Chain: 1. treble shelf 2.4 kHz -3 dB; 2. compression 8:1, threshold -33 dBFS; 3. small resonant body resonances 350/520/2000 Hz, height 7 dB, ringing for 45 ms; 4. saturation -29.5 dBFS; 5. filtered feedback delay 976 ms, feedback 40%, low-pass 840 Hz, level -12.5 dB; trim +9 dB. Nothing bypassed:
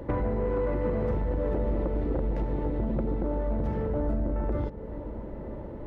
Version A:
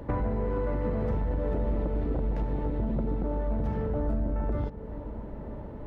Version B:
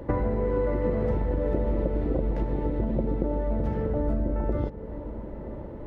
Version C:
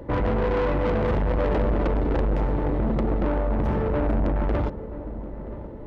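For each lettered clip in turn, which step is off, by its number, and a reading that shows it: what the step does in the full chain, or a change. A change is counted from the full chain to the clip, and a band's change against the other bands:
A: 3, 500 Hz band -2.0 dB; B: 4, distortion -17 dB; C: 2, mean gain reduction 9.0 dB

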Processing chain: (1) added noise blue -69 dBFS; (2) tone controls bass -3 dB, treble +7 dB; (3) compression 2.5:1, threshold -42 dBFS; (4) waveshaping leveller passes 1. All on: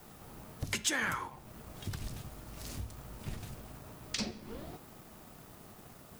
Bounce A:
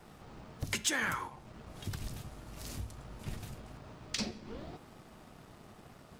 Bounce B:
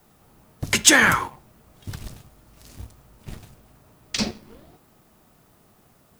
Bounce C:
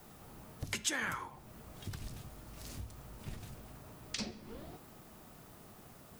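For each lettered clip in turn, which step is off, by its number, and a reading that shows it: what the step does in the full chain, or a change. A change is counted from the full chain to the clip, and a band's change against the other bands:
1, momentary loudness spread change +2 LU; 3, mean gain reduction 6.5 dB; 4, crest factor change +3.5 dB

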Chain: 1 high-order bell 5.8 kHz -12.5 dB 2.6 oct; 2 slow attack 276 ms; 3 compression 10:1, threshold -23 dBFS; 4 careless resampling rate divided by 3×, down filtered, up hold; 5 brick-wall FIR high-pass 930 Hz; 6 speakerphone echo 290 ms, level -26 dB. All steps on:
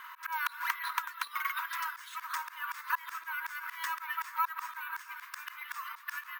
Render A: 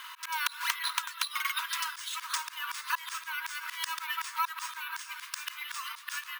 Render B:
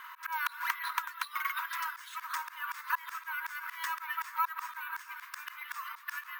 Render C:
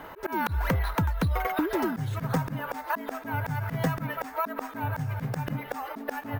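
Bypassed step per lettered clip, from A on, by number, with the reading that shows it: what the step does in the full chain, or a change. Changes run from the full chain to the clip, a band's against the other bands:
1, 1 kHz band -11.5 dB; 6, echo-to-direct -28.5 dB to none; 5, 1 kHz band +4.0 dB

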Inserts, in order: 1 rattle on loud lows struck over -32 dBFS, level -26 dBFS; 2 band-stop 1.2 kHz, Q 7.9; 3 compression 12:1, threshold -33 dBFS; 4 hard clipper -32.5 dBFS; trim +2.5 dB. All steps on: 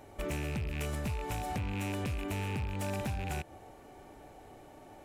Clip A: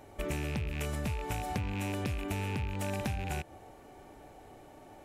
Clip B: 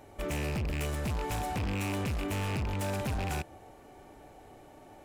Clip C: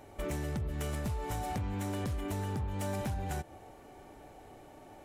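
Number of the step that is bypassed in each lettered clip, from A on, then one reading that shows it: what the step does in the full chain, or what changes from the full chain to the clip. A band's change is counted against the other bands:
4, distortion -17 dB; 3, mean gain reduction 4.0 dB; 1, 2 kHz band -4.5 dB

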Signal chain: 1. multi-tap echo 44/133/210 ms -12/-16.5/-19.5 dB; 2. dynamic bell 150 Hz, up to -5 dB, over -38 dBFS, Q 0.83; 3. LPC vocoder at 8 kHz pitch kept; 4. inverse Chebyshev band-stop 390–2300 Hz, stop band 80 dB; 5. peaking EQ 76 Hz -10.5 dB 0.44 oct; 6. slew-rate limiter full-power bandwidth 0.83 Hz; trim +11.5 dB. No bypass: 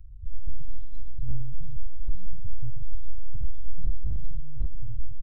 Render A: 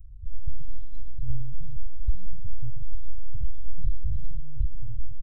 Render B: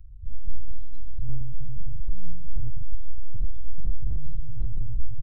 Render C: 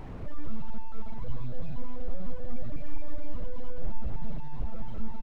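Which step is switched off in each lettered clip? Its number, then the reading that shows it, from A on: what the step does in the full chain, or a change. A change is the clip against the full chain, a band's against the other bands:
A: 6, distortion -23 dB; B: 2, loudness change +1.5 LU; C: 4, momentary loudness spread change -6 LU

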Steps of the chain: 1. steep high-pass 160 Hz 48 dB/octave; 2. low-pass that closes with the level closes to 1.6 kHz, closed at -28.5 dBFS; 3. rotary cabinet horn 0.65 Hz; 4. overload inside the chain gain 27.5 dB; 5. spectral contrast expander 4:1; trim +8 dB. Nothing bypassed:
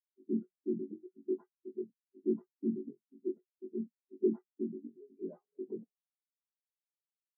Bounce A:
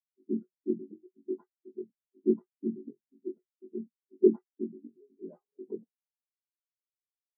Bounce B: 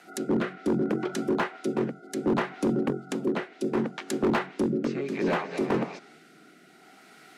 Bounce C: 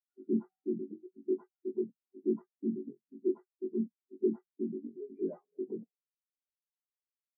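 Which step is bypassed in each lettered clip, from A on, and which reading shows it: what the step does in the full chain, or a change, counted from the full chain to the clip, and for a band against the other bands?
4, distortion -13 dB; 5, crest factor change -11.0 dB; 3, crest factor change -2.5 dB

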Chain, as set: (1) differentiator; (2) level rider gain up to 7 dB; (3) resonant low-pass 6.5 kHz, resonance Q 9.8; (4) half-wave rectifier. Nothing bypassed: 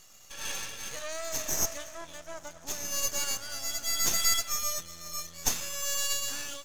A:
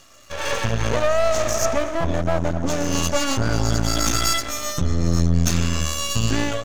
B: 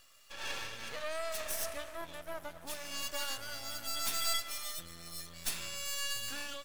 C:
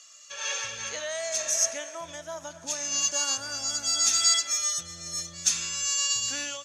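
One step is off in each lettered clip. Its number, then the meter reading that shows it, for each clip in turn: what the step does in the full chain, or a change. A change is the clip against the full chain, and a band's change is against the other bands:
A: 1, 125 Hz band +16.5 dB; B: 3, 8 kHz band -7.5 dB; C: 4, distortion 0 dB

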